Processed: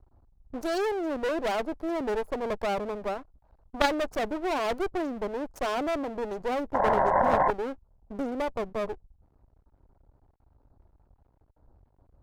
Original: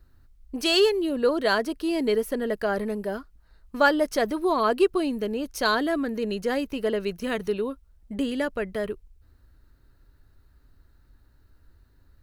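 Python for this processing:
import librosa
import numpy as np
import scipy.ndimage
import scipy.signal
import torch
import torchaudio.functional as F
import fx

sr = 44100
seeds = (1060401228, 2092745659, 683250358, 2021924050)

y = fx.wiener(x, sr, points=15)
y = fx.curve_eq(y, sr, hz=(180.0, 380.0, 820.0, 2100.0, 5900.0), db=(0, 3, 13, -20, -1))
y = np.maximum(y, 0.0)
y = fx.spec_paint(y, sr, seeds[0], shape='noise', start_s=6.74, length_s=0.77, low_hz=510.0, high_hz=1100.0, level_db=-23.0)
y = fx.cheby_harmonics(y, sr, harmonics=(4,), levels_db=(-12,), full_scale_db=-2.0)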